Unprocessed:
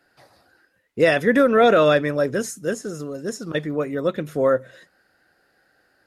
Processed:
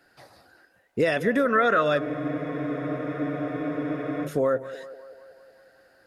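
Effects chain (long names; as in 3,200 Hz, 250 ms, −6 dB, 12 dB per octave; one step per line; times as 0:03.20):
gain on a spectral selection 0:01.46–0:01.82, 1,000–2,100 Hz +10 dB
downward compressor 3 to 1, threshold −24 dBFS, peak gain reduction 12.5 dB
feedback echo with a band-pass in the loop 188 ms, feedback 69%, band-pass 710 Hz, level −13.5 dB
frozen spectrum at 0:02.01, 2.24 s
level +2 dB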